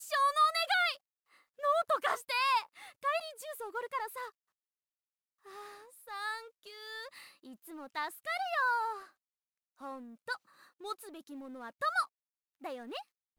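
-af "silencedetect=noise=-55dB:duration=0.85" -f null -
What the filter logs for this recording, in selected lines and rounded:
silence_start: 4.30
silence_end: 5.45 | silence_duration: 1.15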